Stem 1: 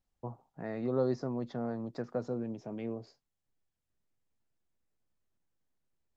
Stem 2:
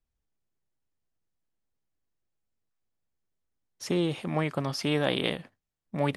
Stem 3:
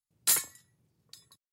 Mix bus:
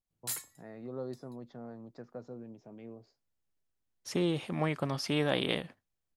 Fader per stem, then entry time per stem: -9.5 dB, -3.0 dB, -11.5 dB; 0.00 s, 0.25 s, 0.00 s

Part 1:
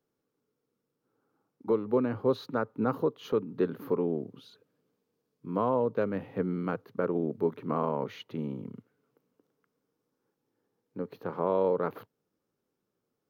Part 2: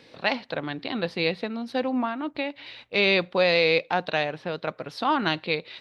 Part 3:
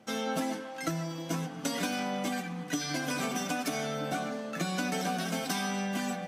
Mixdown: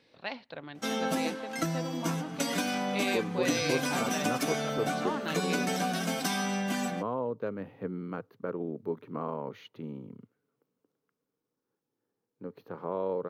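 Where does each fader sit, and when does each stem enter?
-5.5 dB, -12.5 dB, +1.5 dB; 1.45 s, 0.00 s, 0.75 s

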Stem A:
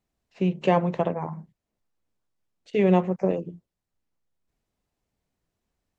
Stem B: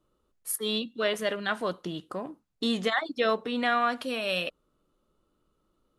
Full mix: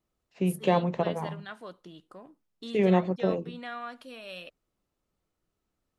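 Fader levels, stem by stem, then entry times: -3.0 dB, -13.0 dB; 0.00 s, 0.00 s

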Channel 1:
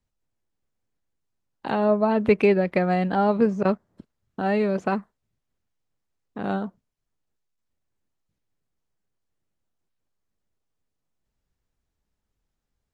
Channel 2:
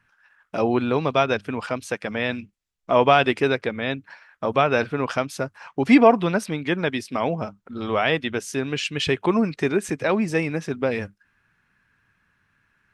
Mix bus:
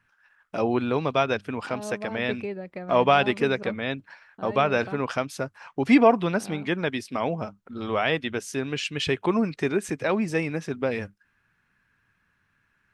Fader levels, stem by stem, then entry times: -14.5 dB, -3.0 dB; 0.00 s, 0.00 s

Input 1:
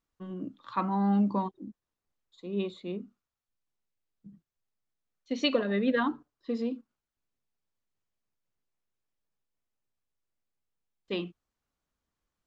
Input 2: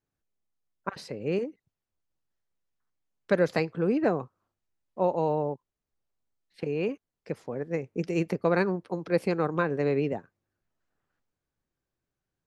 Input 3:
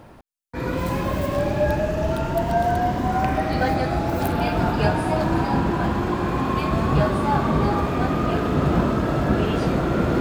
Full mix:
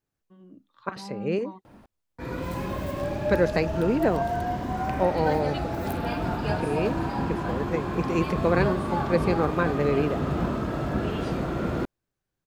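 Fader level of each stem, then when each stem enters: -12.0 dB, +1.5 dB, -7.0 dB; 0.10 s, 0.00 s, 1.65 s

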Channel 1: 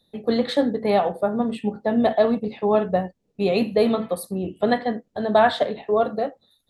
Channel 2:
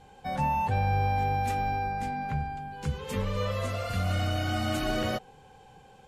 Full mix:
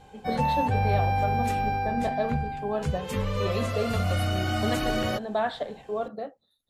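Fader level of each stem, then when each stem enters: -10.5 dB, +2.0 dB; 0.00 s, 0.00 s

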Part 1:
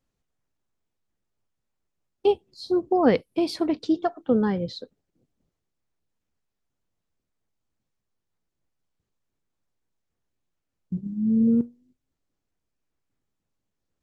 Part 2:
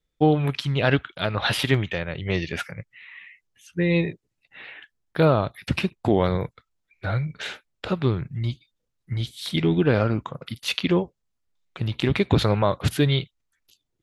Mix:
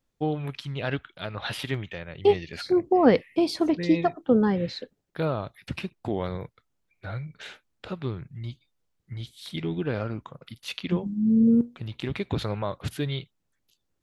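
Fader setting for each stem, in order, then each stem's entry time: +1.0 dB, -9.0 dB; 0.00 s, 0.00 s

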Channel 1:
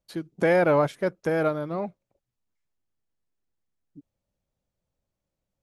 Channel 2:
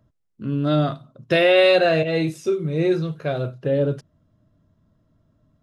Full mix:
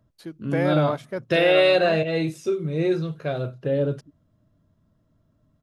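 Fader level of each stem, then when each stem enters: -4.5 dB, -2.5 dB; 0.10 s, 0.00 s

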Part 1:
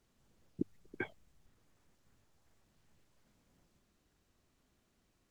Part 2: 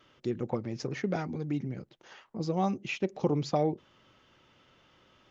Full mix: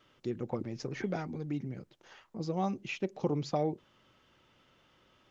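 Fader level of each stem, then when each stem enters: -6.5 dB, -3.5 dB; 0.00 s, 0.00 s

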